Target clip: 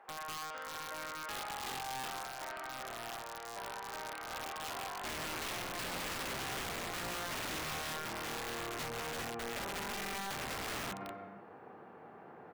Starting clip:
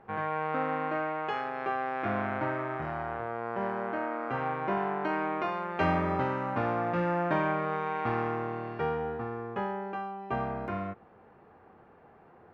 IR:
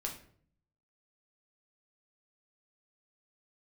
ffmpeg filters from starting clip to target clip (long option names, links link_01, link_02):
-af "asoftclip=type=tanh:threshold=-27dB,acompressor=threshold=-39dB:ratio=12,asetnsamples=nb_out_samples=441:pad=0,asendcmd='5.04 highpass f 150',highpass=740,aecho=1:1:200|330|414.5|469.4|505.1:0.631|0.398|0.251|0.158|0.1,aeval=exprs='(mod(63.1*val(0)+1,2)-1)/63.1':channel_layout=same,volume=1.5dB"